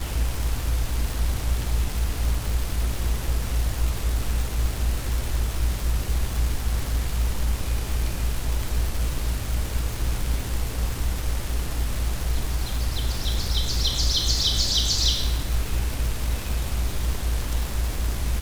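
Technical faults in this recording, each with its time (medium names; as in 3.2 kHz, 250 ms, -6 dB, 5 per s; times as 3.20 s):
crackle 400 per s -27 dBFS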